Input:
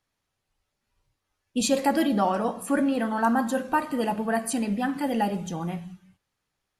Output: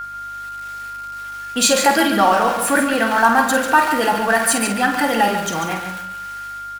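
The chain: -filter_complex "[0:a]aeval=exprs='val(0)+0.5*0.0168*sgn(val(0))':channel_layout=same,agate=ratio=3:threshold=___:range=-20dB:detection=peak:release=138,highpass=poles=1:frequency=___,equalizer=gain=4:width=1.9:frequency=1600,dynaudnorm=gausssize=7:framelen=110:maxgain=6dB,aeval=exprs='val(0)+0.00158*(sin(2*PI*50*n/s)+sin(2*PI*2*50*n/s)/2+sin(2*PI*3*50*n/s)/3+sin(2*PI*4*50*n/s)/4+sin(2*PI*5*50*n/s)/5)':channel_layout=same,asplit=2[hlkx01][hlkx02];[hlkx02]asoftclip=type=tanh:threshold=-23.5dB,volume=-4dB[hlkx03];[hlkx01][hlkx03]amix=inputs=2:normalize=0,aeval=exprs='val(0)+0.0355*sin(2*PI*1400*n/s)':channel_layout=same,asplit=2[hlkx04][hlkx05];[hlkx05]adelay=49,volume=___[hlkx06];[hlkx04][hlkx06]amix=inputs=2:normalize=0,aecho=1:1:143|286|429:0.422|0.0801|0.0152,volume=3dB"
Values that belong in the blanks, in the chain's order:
-34dB, 820, -8.5dB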